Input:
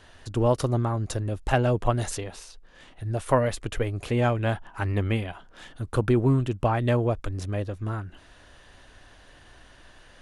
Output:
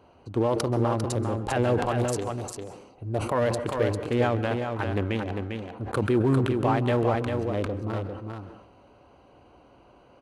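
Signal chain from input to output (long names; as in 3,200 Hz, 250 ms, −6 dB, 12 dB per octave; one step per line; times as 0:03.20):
adaptive Wiener filter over 25 samples
high-pass filter 70 Hz
low-shelf EQ 170 Hz −11 dB
notch filter 640 Hz, Q 16
brickwall limiter −19 dBFS, peak gain reduction 11.5 dB
single-tap delay 399 ms −5.5 dB
on a send at −14.5 dB: convolution reverb RT60 0.85 s, pre-delay 123 ms
on the sum: downsampling to 32,000 Hz
level that may fall only so fast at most 60 dB per second
level +5 dB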